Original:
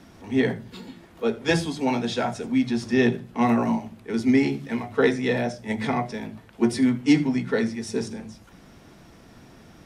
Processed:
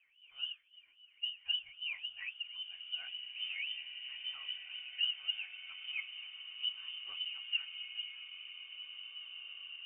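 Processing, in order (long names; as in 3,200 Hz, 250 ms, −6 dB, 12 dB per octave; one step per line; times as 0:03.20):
LFO wah 3.7 Hz 320–1,200 Hz, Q 9.8
voice inversion scrambler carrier 3,300 Hz
slow-attack reverb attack 2,430 ms, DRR 5 dB
level −5 dB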